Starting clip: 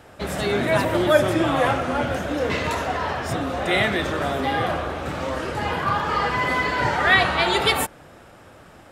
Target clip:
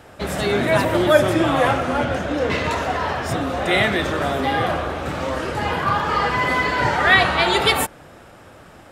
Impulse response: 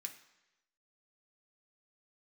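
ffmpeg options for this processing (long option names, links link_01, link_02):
-filter_complex "[0:a]asettb=1/sr,asplit=3[link_01][link_02][link_03];[link_01]atrim=end=2.044[link_04];[link_02]atrim=start=2.04:end=2.82,asetpts=PTS-STARTPTS,afade=type=in:duration=0.004:curve=qsin,afade=type=out:start_time=0.776:duration=0.004:curve=qsin,adynamicsmooth=sensitivity=5.5:basefreq=7300[link_05];[link_03]atrim=start=2.816[link_06];[link_04][link_05]acrossfade=duration=0.004:curve1=hsin:curve2=qsin[link_07];[link_07][link_06]acrossfade=duration=0.004:curve1=qsin:curve2=hsin,volume=2.5dB"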